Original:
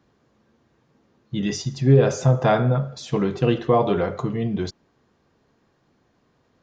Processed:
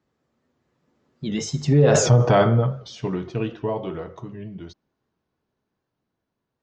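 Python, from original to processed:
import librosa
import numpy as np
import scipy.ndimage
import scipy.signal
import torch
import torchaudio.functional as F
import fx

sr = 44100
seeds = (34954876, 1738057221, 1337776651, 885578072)

p1 = fx.doppler_pass(x, sr, speed_mps=26, closest_m=4.1, pass_at_s=2.03)
p2 = fx.over_compress(p1, sr, threshold_db=-25.0, ratio=-0.5)
p3 = p1 + (p2 * librosa.db_to_amplitude(1.5))
p4 = fx.record_warp(p3, sr, rpm=78.0, depth_cents=100.0)
y = p4 * librosa.db_to_amplitude(2.5)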